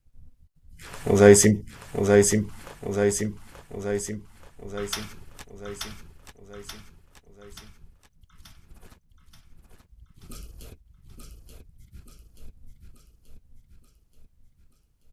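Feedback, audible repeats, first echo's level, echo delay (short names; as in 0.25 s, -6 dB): 54%, 6, -4.5 dB, 0.881 s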